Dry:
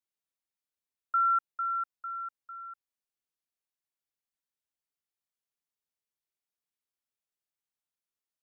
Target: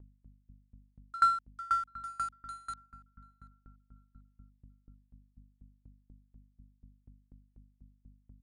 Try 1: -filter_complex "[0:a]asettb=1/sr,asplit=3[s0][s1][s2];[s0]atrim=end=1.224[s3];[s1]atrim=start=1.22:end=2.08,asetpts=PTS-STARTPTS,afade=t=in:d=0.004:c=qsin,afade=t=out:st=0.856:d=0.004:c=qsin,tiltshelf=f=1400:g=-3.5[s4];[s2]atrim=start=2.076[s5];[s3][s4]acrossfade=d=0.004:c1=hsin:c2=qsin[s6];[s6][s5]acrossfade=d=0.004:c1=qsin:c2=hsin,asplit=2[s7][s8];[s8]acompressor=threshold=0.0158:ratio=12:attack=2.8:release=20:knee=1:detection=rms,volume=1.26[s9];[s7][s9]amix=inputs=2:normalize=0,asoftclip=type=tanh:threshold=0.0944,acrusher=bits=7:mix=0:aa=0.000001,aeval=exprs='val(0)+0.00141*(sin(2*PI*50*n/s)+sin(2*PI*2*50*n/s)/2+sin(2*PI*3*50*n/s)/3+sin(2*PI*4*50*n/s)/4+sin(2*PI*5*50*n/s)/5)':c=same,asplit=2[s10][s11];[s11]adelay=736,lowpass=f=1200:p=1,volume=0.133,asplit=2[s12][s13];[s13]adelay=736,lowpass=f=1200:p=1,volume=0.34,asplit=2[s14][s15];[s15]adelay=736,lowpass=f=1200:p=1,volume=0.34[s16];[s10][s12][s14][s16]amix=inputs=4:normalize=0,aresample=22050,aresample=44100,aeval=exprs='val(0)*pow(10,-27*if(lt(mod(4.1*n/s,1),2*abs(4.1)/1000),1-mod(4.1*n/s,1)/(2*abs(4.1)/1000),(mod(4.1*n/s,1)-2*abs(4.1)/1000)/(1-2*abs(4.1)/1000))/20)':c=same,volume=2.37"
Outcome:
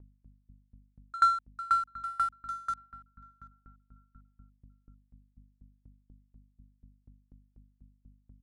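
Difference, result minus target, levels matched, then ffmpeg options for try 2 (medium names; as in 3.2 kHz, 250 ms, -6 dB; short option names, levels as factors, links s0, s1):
compression: peak gain reduction +12 dB
-filter_complex "[0:a]asettb=1/sr,asplit=3[s0][s1][s2];[s0]atrim=end=1.224[s3];[s1]atrim=start=1.22:end=2.08,asetpts=PTS-STARTPTS,afade=t=in:d=0.004:c=qsin,afade=t=out:st=0.856:d=0.004:c=qsin,tiltshelf=f=1400:g=-3.5[s4];[s2]atrim=start=2.076[s5];[s3][s4]acrossfade=d=0.004:c1=hsin:c2=qsin[s6];[s6][s5]acrossfade=d=0.004:c1=qsin:c2=hsin,asoftclip=type=tanh:threshold=0.0944,acrusher=bits=7:mix=0:aa=0.000001,aeval=exprs='val(0)+0.00141*(sin(2*PI*50*n/s)+sin(2*PI*2*50*n/s)/2+sin(2*PI*3*50*n/s)/3+sin(2*PI*4*50*n/s)/4+sin(2*PI*5*50*n/s)/5)':c=same,asplit=2[s7][s8];[s8]adelay=736,lowpass=f=1200:p=1,volume=0.133,asplit=2[s9][s10];[s10]adelay=736,lowpass=f=1200:p=1,volume=0.34,asplit=2[s11][s12];[s12]adelay=736,lowpass=f=1200:p=1,volume=0.34[s13];[s7][s9][s11][s13]amix=inputs=4:normalize=0,aresample=22050,aresample=44100,aeval=exprs='val(0)*pow(10,-27*if(lt(mod(4.1*n/s,1),2*abs(4.1)/1000),1-mod(4.1*n/s,1)/(2*abs(4.1)/1000),(mod(4.1*n/s,1)-2*abs(4.1)/1000)/(1-2*abs(4.1)/1000))/20)':c=same,volume=2.37"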